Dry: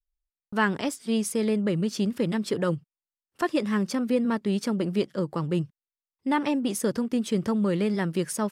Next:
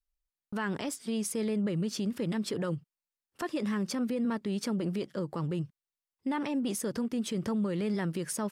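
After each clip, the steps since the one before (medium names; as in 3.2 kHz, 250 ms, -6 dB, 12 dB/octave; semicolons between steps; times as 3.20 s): peak limiter -23 dBFS, peak gain reduction 10.5 dB; trim -1.5 dB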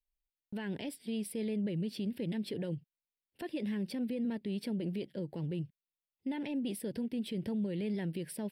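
static phaser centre 2.9 kHz, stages 4; trim -3.5 dB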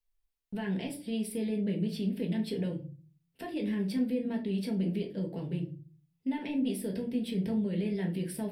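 simulated room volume 200 m³, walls furnished, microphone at 1.6 m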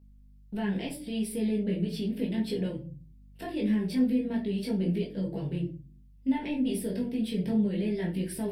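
hum 50 Hz, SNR 26 dB; chorus voices 4, 0.35 Hz, delay 19 ms, depth 4.7 ms; trim +5.5 dB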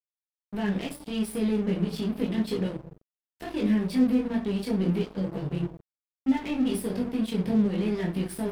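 crossover distortion -42.5 dBFS; trim +4 dB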